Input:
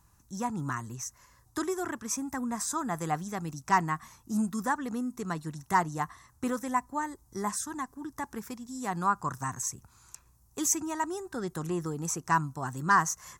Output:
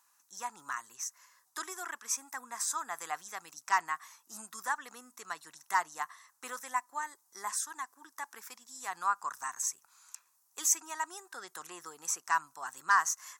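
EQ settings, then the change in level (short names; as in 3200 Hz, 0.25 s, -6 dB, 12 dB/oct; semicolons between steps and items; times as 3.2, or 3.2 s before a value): HPF 1100 Hz 12 dB/oct; 0.0 dB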